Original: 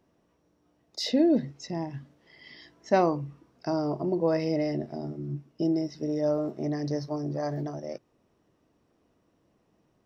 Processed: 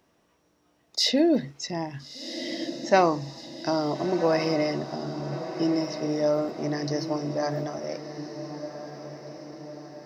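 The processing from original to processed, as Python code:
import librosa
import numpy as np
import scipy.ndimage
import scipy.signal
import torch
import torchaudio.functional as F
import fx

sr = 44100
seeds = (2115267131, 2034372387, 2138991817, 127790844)

y = fx.tilt_shelf(x, sr, db=-5.0, hz=740.0)
y = fx.echo_diffused(y, sr, ms=1376, feedback_pct=53, wet_db=-10)
y = y * librosa.db_to_amplitude(4.0)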